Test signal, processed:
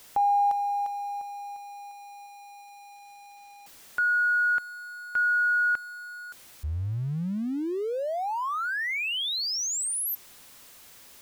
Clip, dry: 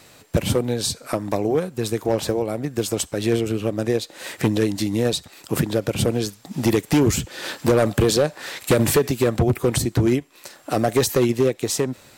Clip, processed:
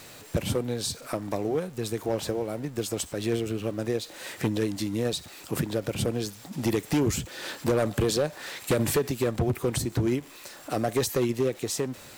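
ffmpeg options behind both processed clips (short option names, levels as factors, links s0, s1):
-af "aeval=exprs='val(0)+0.5*0.0158*sgn(val(0))':c=same,volume=0.422"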